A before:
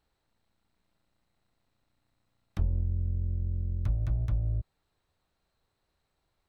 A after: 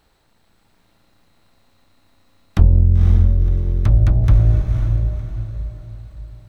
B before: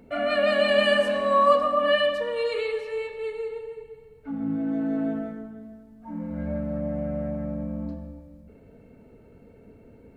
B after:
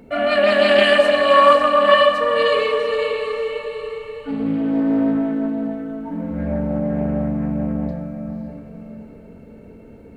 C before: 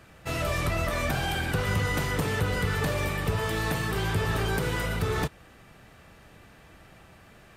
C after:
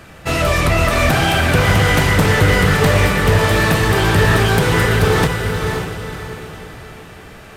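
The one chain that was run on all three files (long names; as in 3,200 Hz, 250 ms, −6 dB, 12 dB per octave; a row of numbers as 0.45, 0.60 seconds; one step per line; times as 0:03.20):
mains-hum notches 60/120 Hz
feedback delay with all-pass diffusion 524 ms, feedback 41%, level −5 dB
highs frequency-modulated by the lows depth 0.19 ms
normalise the peak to −1.5 dBFS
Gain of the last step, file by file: +17.0, +6.5, +13.0 decibels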